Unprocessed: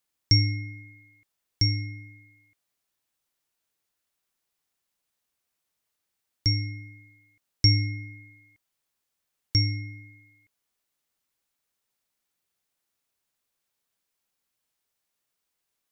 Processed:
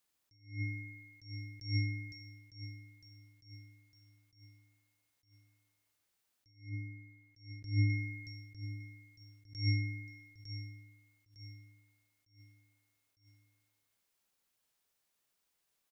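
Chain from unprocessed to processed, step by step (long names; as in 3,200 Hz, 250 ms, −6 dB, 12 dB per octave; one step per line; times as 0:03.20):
0:06.69–0:07.90: high-shelf EQ 2,500 Hz −11.5 dB
brickwall limiter −20 dBFS, peak gain reduction 11.5 dB
repeating echo 905 ms, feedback 45%, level −15 dB
level that may rise only so fast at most 150 dB per second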